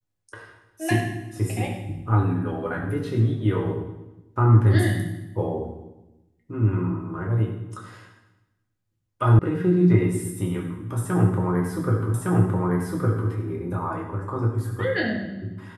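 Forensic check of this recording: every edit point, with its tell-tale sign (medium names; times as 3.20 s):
9.39 s: sound stops dead
12.14 s: repeat of the last 1.16 s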